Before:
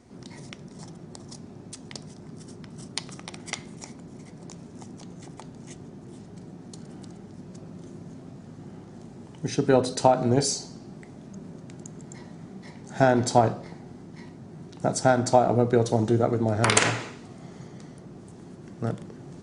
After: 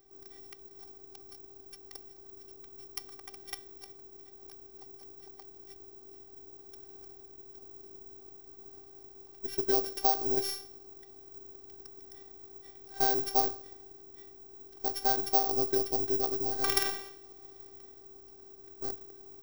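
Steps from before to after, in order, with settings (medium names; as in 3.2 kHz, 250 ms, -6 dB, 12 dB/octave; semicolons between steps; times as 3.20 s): sorted samples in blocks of 8 samples; careless resampling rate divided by 2×, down none, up zero stuff; robot voice 389 Hz; trim -8.5 dB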